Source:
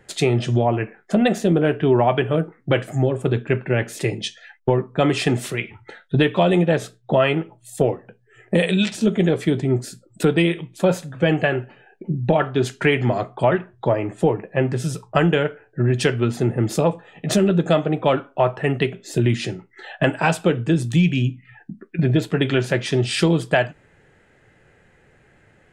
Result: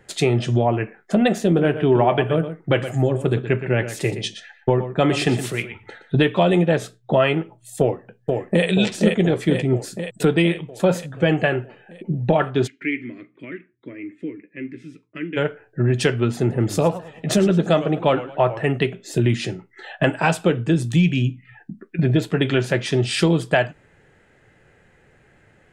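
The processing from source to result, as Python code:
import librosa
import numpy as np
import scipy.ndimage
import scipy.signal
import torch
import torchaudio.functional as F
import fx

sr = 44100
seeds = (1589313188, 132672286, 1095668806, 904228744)

y = fx.echo_single(x, sr, ms=120, db=-11.5, at=(1.56, 6.23), fade=0.02)
y = fx.echo_throw(y, sr, start_s=7.8, length_s=0.86, ms=480, feedback_pct=65, wet_db=-3.5)
y = fx.double_bandpass(y, sr, hz=790.0, octaves=2.9, at=(12.66, 15.36), fade=0.02)
y = fx.echo_warbled(y, sr, ms=107, feedback_pct=38, rate_hz=2.8, cents=206, wet_db=-15, at=(16.39, 18.64))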